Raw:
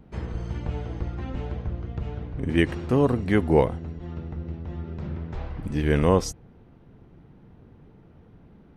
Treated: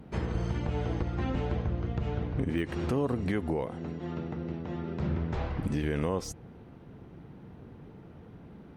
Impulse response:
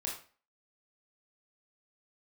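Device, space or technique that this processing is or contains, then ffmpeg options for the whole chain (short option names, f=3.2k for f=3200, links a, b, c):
podcast mastering chain: -filter_complex "[0:a]asettb=1/sr,asplit=3[a][b][c];[a]atrim=end=3.654[d];[b]atrim=start=3.65:end=5,asetpts=PTS-STARTPTS,afade=t=in:d=0.004:c=qsin,afade=t=out:st=1.346:d=0.004:c=qsin,highpass=150[e];[c]atrim=start=4.996[f];[d][e]acrossfade=d=0.004:c1=hsin:c2=qsin[g];[g][f]acrossfade=d=0.004:c1=qsin:c2=hsin,highpass=f=85:p=1,deesser=0.75,acompressor=threshold=-26dB:ratio=3,alimiter=limit=-24dB:level=0:latency=1:release=191,volume=4.5dB" -ar 48000 -c:a libmp3lame -b:a 96k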